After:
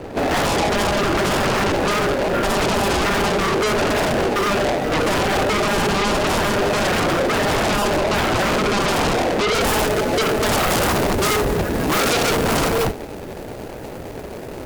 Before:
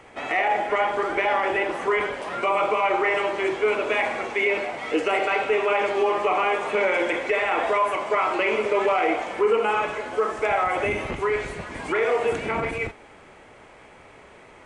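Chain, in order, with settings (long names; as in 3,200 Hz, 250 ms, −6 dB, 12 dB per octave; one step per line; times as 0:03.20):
running median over 41 samples
brickwall limiter −21.5 dBFS, peak gain reduction 7.5 dB
sine wavefolder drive 11 dB, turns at −21.5 dBFS
high-shelf EQ 7,800 Hz −3.5 dB, from 0:09.55 +7 dB, from 0:10.67 +11.5 dB
level +6 dB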